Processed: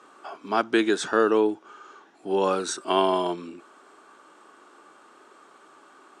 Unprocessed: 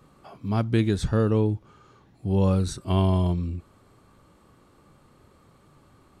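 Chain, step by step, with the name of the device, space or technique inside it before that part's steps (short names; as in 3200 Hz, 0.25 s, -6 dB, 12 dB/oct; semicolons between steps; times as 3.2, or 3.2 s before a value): phone speaker on a table (speaker cabinet 350–8500 Hz, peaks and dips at 520 Hz -8 dB, 1500 Hz +6 dB, 2100 Hz -4 dB, 4300 Hz -6 dB); gain +8.5 dB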